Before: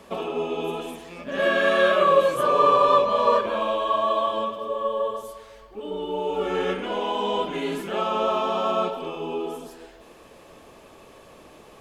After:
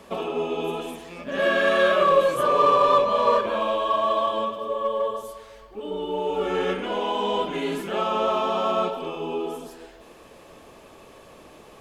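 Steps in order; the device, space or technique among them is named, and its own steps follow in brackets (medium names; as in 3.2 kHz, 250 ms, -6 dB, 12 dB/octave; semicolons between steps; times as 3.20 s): parallel distortion (in parallel at -11 dB: hard clipper -21 dBFS, distortion -8 dB); on the sum: trim -1.5 dB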